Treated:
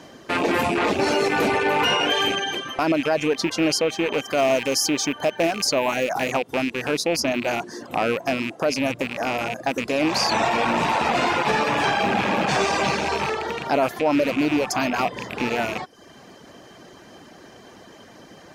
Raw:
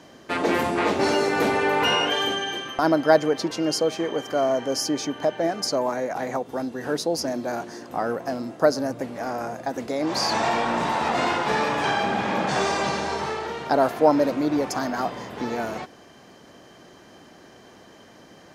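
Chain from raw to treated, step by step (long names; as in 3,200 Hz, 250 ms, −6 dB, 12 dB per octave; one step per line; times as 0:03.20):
loose part that buzzes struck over −37 dBFS, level −20 dBFS
reverb reduction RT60 0.52 s
0:04.31–0:06.34: high-shelf EQ 7,000 Hz +9 dB
brickwall limiter −16 dBFS, peak gain reduction 11.5 dB
level +4.5 dB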